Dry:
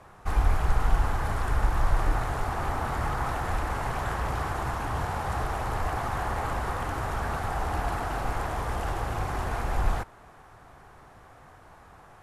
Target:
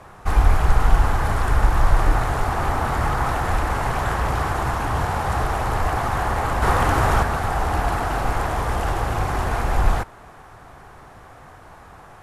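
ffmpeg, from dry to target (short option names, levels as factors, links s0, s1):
-filter_complex "[0:a]asettb=1/sr,asplit=3[s0][s1][s2];[s0]atrim=end=6.624[s3];[s1]atrim=start=6.62:end=7.23,asetpts=PTS-STARTPTS,afade=t=in:d=0.004:c=qsin,afade=t=out:st=0.606:d=0.004:c=qsin,acontrast=31[s4];[s2]atrim=start=7.226[s5];[s3][s4]acrossfade=d=0.004:c1=hsin:c2=qsin[s6];[s6][s5]acrossfade=d=0.004:c1=qsin:c2=hsin,volume=2.37"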